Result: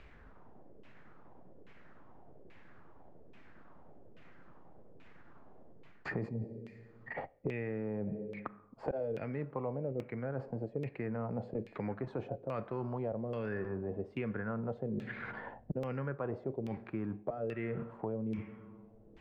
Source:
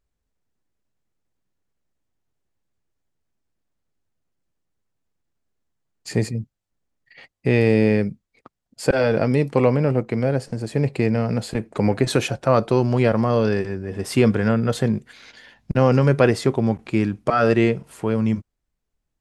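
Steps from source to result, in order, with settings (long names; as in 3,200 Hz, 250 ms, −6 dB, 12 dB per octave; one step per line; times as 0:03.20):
high-shelf EQ 9,300 Hz −4 dB
four-comb reverb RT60 0.99 s, combs from 30 ms, DRR 17 dB
reversed playback
downward compressor 5 to 1, threshold −33 dBFS, peak gain reduction 20 dB
reversed playback
auto-filter low-pass saw down 1.2 Hz 430–2,600 Hz
multiband upward and downward compressor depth 100%
level −5 dB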